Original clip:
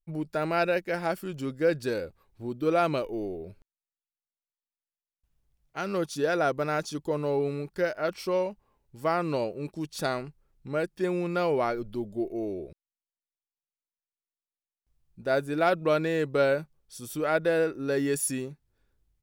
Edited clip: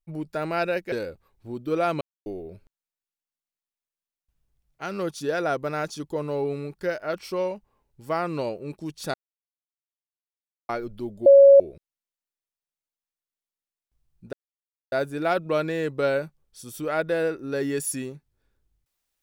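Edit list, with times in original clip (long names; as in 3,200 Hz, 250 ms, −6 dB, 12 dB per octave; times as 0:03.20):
0:00.92–0:01.87: remove
0:02.96–0:03.21: silence
0:10.09–0:11.64: silence
0:12.21–0:12.55: beep over 555 Hz −8 dBFS
0:15.28: splice in silence 0.59 s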